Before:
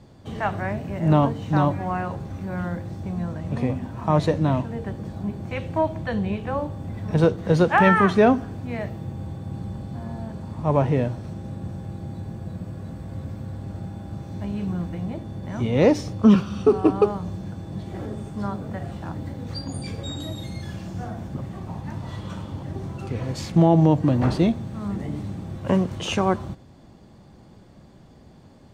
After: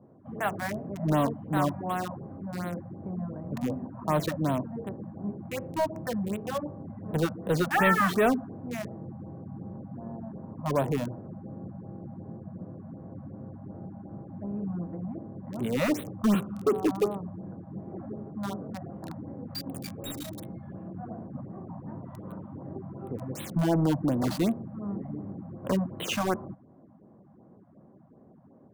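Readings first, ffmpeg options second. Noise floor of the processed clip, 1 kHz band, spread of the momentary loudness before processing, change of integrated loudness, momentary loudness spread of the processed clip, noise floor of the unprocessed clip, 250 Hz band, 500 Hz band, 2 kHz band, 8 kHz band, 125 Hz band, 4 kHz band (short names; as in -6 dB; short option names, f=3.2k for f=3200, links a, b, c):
-55 dBFS, -6.0 dB, 16 LU, -7.0 dB, 16 LU, -49 dBFS, -7.0 dB, -7.5 dB, -4.0 dB, n/a, -9.5 dB, -4.0 dB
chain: -filter_complex "[0:a]highpass=180,bandreject=f=860:w=12,acrossover=split=1200[a][b];[a]asoftclip=type=tanh:threshold=-16dB[c];[b]acrusher=bits=5:mix=0:aa=0.000001[d];[c][d]amix=inputs=2:normalize=0,afftfilt=real='re*(1-between(b*sr/1024,360*pow(6000/360,0.5+0.5*sin(2*PI*2.7*pts/sr))/1.41,360*pow(6000/360,0.5+0.5*sin(2*PI*2.7*pts/sr))*1.41))':imag='im*(1-between(b*sr/1024,360*pow(6000/360,0.5+0.5*sin(2*PI*2.7*pts/sr))/1.41,360*pow(6000/360,0.5+0.5*sin(2*PI*2.7*pts/sr))*1.41))':win_size=1024:overlap=0.75,volume=-2.5dB"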